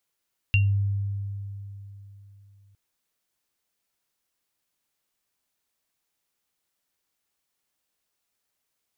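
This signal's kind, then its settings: sine partials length 2.21 s, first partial 99.8 Hz, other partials 2760 Hz, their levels -1 dB, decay 3.42 s, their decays 0.21 s, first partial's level -16.5 dB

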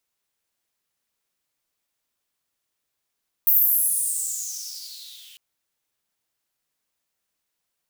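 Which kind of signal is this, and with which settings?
swept filtered noise white, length 1.90 s highpass, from 15000 Hz, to 3000 Hz, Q 7.2, exponential, gain ramp -30 dB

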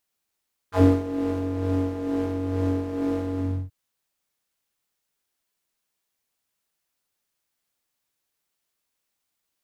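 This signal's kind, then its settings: synth patch with tremolo F#2, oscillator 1 triangle, oscillator 2 square, interval 0 st, detune 20 cents, oscillator 2 level -2.5 dB, noise -5.5 dB, filter bandpass, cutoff 120 Hz, Q 2.2, filter envelope 3.5 oct, filter decay 0.09 s, filter sustain 45%, attack 93 ms, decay 0.22 s, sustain -9 dB, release 0.31 s, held 2.67 s, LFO 2.2 Hz, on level 5.5 dB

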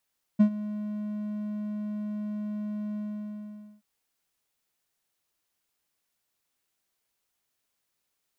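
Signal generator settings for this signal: ADSR triangle 210 Hz, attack 17 ms, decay 85 ms, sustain -17 dB, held 2.57 s, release 0.857 s -11.5 dBFS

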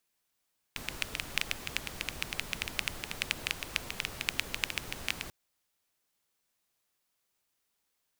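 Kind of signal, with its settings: rain from filtered ticks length 4.54 s, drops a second 9.4, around 2500 Hz, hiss -5 dB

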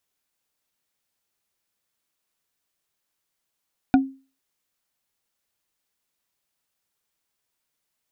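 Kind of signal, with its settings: wood hit bar, lowest mode 268 Hz, decay 0.34 s, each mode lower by 5.5 dB, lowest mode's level -9.5 dB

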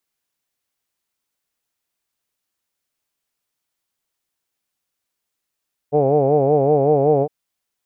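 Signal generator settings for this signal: formant vowel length 1.36 s, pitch 141 Hz, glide +0.5 st, vibrato depth 1.1 st, F1 480 Hz, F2 760 Hz, F3 2400 Hz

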